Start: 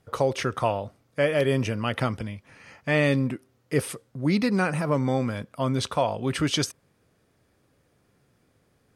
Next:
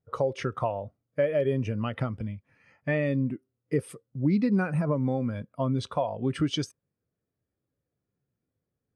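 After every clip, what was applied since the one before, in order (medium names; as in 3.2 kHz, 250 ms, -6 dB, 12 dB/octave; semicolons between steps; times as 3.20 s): compression 4:1, threshold -25 dBFS, peak gain reduction 7.5 dB; spectral contrast expander 1.5:1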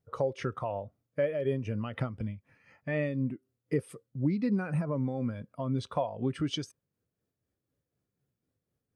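in parallel at +1.5 dB: compression, threshold -35 dBFS, peak gain reduction 14.5 dB; on the sum: tremolo 4 Hz, depth 45%; trim -5 dB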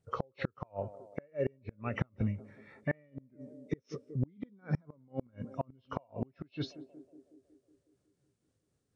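knee-point frequency compression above 2 kHz 1.5:1; band-passed feedback delay 184 ms, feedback 67%, band-pass 390 Hz, level -18.5 dB; inverted gate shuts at -23 dBFS, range -35 dB; trim +3.5 dB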